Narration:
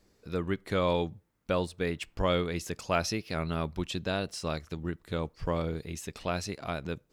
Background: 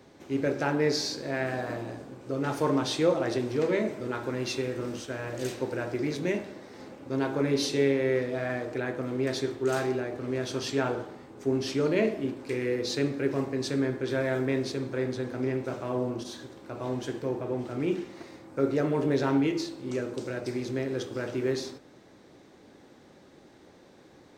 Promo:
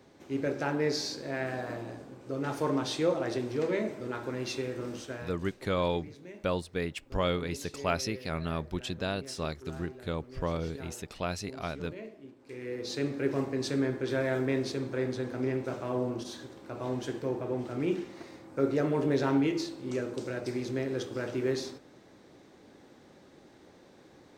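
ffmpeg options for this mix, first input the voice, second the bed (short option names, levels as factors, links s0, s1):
-filter_complex "[0:a]adelay=4950,volume=0.841[s0];[1:a]volume=4.73,afade=t=out:st=5.12:d=0.27:silence=0.177828,afade=t=in:st=12.39:d=0.9:silence=0.141254[s1];[s0][s1]amix=inputs=2:normalize=0"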